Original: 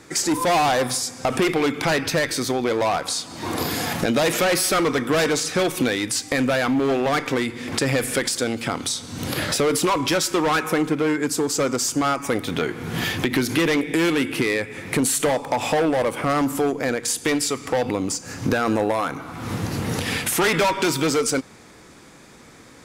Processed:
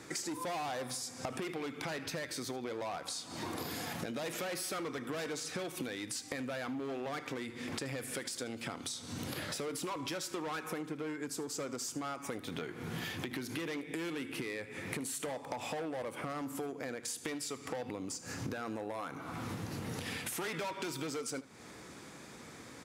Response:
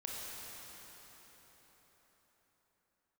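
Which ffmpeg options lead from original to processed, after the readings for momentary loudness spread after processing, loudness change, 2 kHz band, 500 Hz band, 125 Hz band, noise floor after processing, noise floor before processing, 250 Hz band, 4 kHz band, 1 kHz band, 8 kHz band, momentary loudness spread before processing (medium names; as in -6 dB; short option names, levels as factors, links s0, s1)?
4 LU, -17.5 dB, -17.5 dB, -18.5 dB, -16.5 dB, -51 dBFS, -47 dBFS, -17.5 dB, -16.5 dB, -18.0 dB, -16.0 dB, 6 LU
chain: -filter_complex "[0:a]highpass=71,acompressor=threshold=0.02:ratio=6,asplit=2[s0][s1];[s1]aecho=0:1:77:0.119[s2];[s0][s2]amix=inputs=2:normalize=0,volume=0.631"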